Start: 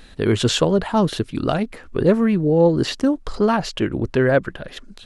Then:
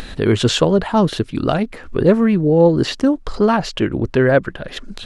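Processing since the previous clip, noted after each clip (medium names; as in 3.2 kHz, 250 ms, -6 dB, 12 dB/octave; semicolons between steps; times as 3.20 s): treble shelf 8.5 kHz -6.5 dB; upward compressor, threshold -24 dBFS; trim +3 dB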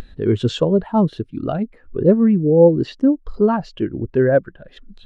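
spectral contrast expander 1.5:1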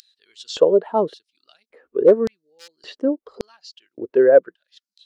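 hard clipper -5 dBFS, distortion -25 dB; LFO high-pass square 0.88 Hz 450–4900 Hz; trim -2.5 dB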